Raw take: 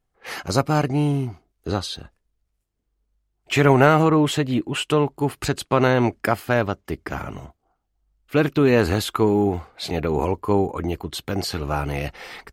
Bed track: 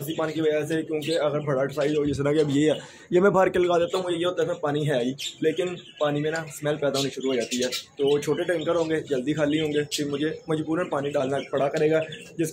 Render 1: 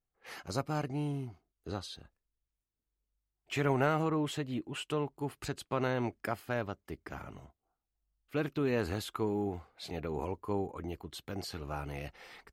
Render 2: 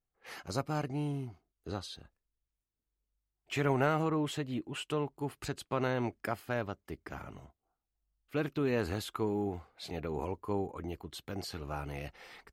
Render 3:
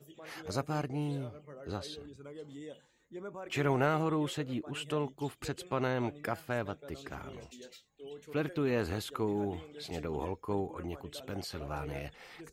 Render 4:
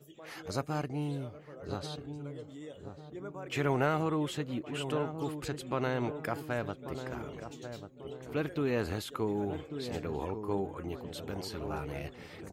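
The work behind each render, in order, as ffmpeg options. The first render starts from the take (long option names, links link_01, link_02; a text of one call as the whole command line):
ffmpeg -i in.wav -af "volume=-14.5dB" out.wav
ffmpeg -i in.wav -af anull out.wav
ffmpeg -i in.wav -i bed.wav -filter_complex "[1:a]volume=-25dB[link_01];[0:a][link_01]amix=inputs=2:normalize=0" out.wav
ffmpeg -i in.wav -filter_complex "[0:a]asplit=2[link_01][link_02];[link_02]adelay=1142,lowpass=frequency=850:poles=1,volume=-8dB,asplit=2[link_03][link_04];[link_04]adelay=1142,lowpass=frequency=850:poles=1,volume=0.48,asplit=2[link_05][link_06];[link_06]adelay=1142,lowpass=frequency=850:poles=1,volume=0.48,asplit=2[link_07][link_08];[link_08]adelay=1142,lowpass=frequency=850:poles=1,volume=0.48,asplit=2[link_09][link_10];[link_10]adelay=1142,lowpass=frequency=850:poles=1,volume=0.48,asplit=2[link_11][link_12];[link_12]adelay=1142,lowpass=frequency=850:poles=1,volume=0.48[link_13];[link_01][link_03][link_05][link_07][link_09][link_11][link_13]amix=inputs=7:normalize=0" out.wav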